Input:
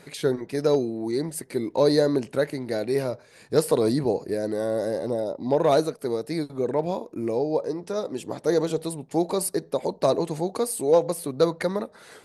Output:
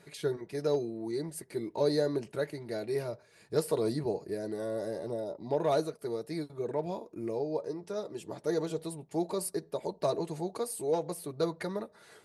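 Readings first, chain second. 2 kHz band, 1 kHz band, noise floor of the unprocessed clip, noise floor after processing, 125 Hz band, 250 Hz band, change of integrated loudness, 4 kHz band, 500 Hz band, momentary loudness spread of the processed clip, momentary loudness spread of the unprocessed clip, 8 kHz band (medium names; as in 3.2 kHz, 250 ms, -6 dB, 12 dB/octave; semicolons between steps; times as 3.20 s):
-8.5 dB, -8.5 dB, -53 dBFS, -61 dBFS, -7.5 dB, -9.0 dB, -8.5 dB, -8.5 dB, -8.5 dB, 8 LU, 9 LU, -8.5 dB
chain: comb of notches 260 Hz; trim -7.5 dB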